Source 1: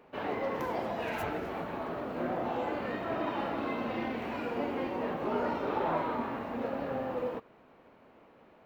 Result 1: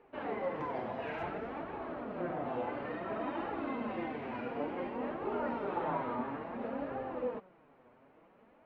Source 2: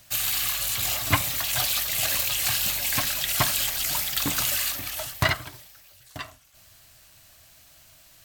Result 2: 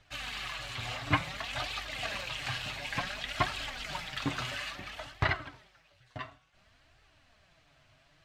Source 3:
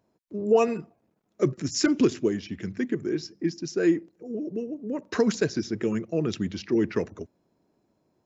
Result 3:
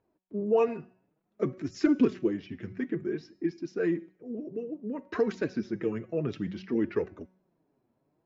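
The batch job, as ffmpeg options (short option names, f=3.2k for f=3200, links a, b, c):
-af "lowpass=2.7k,bandreject=f=186:t=h:w=4,bandreject=f=372:t=h:w=4,bandreject=f=558:t=h:w=4,bandreject=f=744:t=h:w=4,bandreject=f=930:t=h:w=4,bandreject=f=1.116k:t=h:w=4,bandreject=f=1.302k:t=h:w=4,bandreject=f=1.488k:t=h:w=4,bandreject=f=1.674k:t=h:w=4,bandreject=f=1.86k:t=h:w=4,bandreject=f=2.046k:t=h:w=4,bandreject=f=2.232k:t=h:w=4,bandreject=f=2.418k:t=h:w=4,bandreject=f=2.604k:t=h:w=4,bandreject=f=2.79k:t=h:w=4,bandreject=f=2.976k:t=h:w=4,bandreject=f=3.162k:t=h:w=4,bandreject=f=3.348k:t=h:w=4,bandreject=f=3.534k:t=h:w=4,bandreject=f=3.72k:t=h:w=4,bandreject=f=3.906k:t=h:w=4,bandreject=f=4.092k:t=h:w=4,bandreject=f=4.278k:t=h:w=4,bandreject=f=4.464k:t=h:w=4,bandreject=f=4.65k:t=h:w=4,bandreject=f=4.836k:t=h:w=4,bandreject=f=5.022k:t=h:w=4,bandreject=f=5.208k:t=h:w=4,bandreject=f=5.394k:t=h:w=4,bandreject=f=5.58k:t=h:w=4,bandreject=f=5.766k:t=h:w=4,bandreject=f=5.952k:t=h:w=4,bandreject=f=6.138k:t=h:w=4,bandreject=f=6.324k:t=h:w=4,bandreject=f=6.51k:t=h:w=4,bandreject=f=6.696k:t=h:w=4,bandreject=f=6.882k:t=h:w=4,bandreject=f=7.068k:t=h:w=4,bandreject=f=7.254k:t=h:w=4,bandreject=f=7.44k:t=h:w=4,flanger=delay=2.2:depth=6.2:regen=30:speed=0.57:shape=triangular"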